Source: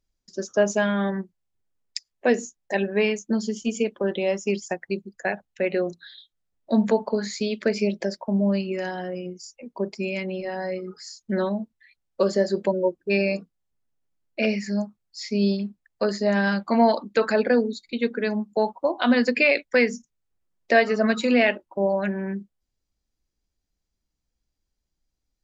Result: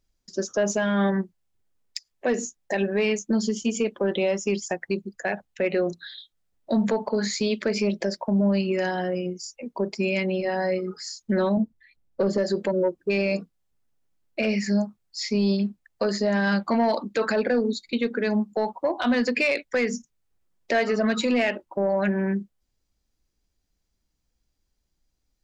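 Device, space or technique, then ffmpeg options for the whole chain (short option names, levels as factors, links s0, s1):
soft clipper into limiter: -filter_complex "[0:a]asettb=1/sr,asplit=3[s0][s1][s2];[s0]atrim=end=11.574[s3];[s1]atrim=start=11.57:end=12.38,asetpts=PTS-STARTPTS,afade=t=in:d=0.004:c=qsin,afade=t=out:st=0.806:d=0.004:c=qsin,tiltshelf=f=670:g=7[s4];[s2]atrim=start=12.376[s5];[s3][s4]acrossfade=d=0.004:c1=hsin:c2=qsin[s6];[s6][s5]acrossfade=d=0.004:c1=qsin:c2=hsin,asoftclip=type=tanh:threshold=0.266,alimiter=limit=0.1:level=0:latency=1:release=104,volume=1.68"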